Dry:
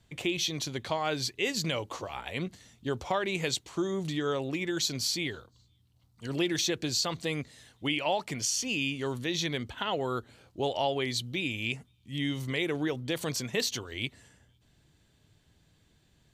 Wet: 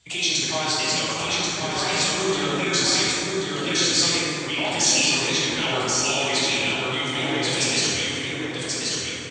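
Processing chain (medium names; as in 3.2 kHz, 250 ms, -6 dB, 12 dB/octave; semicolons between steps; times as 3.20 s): peak limiter -24.5 dBFS, peak gain reduction 7.5 dB; tilt shelf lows -3.5 dB, about 660 Hz; de-hum 142.9 Hz, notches 5; time stretch by phase-locked vocoder 0.57×; steep low-pass 8.6 kHz 72 dB/octave; treble shelf 2.4 kHz +10.5 dB; delay 1084 ms -3.5 dB; plate-style reverb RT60 3.3 s, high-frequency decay 0.4×, DRR -8 dB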